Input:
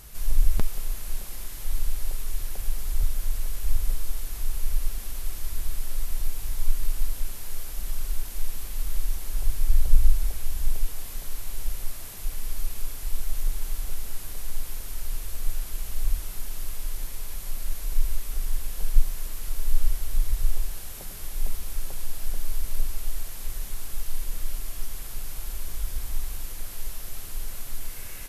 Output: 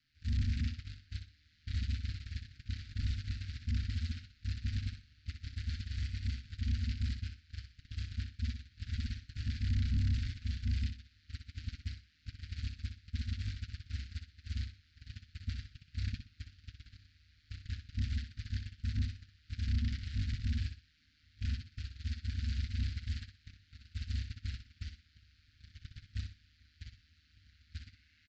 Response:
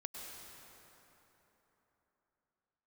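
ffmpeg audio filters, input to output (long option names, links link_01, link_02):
-filter_complex "[0:a]lowpass=frequency=4500:width_type=q:width=4.6,acrossover=split=220 2700:gain=0.126 1 0.158[link_01][link_02][link_03];[link_01][link_02][link_03]amix=inputs=3:normalize=0,aeval=exprs='val(0)*sin(2*PI*78*n/s)':channel_layout=same,aresample=16000,asoftclip=type=hard:threshold=-37.5dB,aresample=44100,agate=range=-28dB:threshold=-41dB:ratio=16:detection=peak,asuperstop=centerf=650:order=12:qfactor=0.53,asplit=2[link_04][link_05];[link_05]aecho=0:1:62|124|186:0.398|0.0995|0.0249[link_06];[link_04][link_06]amix=inputs=2:normalize=0,volume=10dB"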